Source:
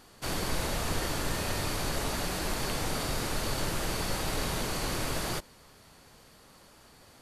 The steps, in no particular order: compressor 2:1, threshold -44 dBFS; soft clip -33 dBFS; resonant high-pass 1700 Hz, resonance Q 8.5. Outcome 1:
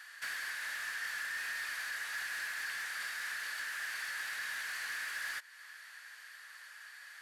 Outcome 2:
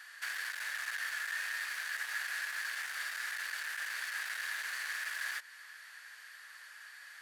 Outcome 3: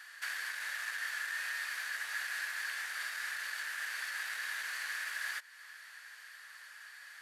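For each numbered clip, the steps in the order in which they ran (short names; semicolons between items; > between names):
compressor > resonant high-pass > soft clip; soft clip > compressor > resonant high-pass; compressor > soft clip > resonant high-pass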